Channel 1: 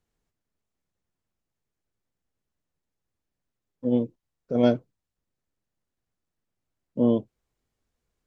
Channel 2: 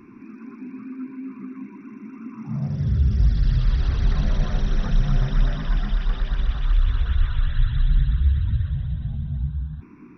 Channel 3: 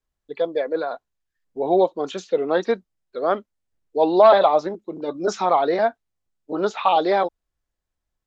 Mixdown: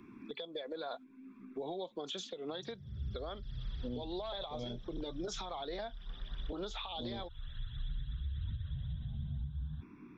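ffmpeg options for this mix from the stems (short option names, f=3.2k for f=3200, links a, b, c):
-filter_complex "[0:a]flanger=delay=22.5:depth=3.8:speed=1.2,volume=-3dB[a];[1:a]volume=-8.5dB[b];[2:a]agate=range=-8dB:threshold=-39dB:ratio=16:detection=peak,acompressor=threshold=-25dB:ratio=6,volume=1.5dB,asplit=2[c][d];[d]apad=whole_len=448595[e];[b][e]sidechaincompress=threshold=-42dB:ratio=3:attack=25:release=1200[f];[a][f][c]amix=inputs=3:normalize=0,equalizer=f=3.4k:w=5.5:g=15,acrossover=split=150|3000[g][h][i];[h]acompressor=threshold=-32dB:ratio=6[j];[g][j][i]amix=inputs=3:normalize=0,alimiter=level_in=7.5dB:limit=-24dB:level=0:latency=1:release=361,volume=-7.5dB"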